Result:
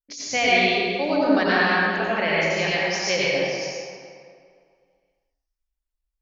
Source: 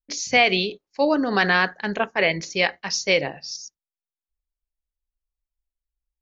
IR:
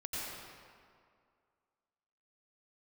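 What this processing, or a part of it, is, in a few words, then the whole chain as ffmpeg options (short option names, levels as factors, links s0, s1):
stairwell: -filter_complex "[1:a]atrim=start_sample=2205[s0];[0:a][s0]afir=irnorm=-1:irlink=0,volume=0.841"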